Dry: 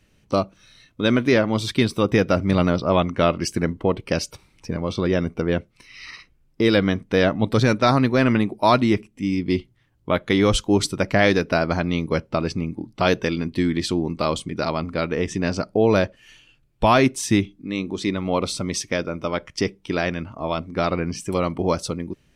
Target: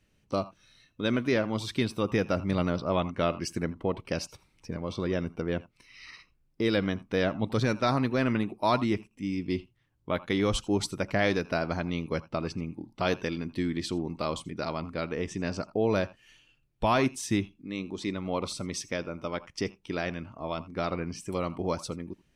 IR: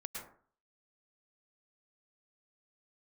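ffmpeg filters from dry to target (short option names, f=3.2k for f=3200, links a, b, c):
-filter_complex "[1:a]atrim=start_sample=2205,atrim=end_sample=4410,asetrate=52920,aresample=44100[a];[0:a][a]afir=irnorm=-1:irlink=0,volume=-2dB"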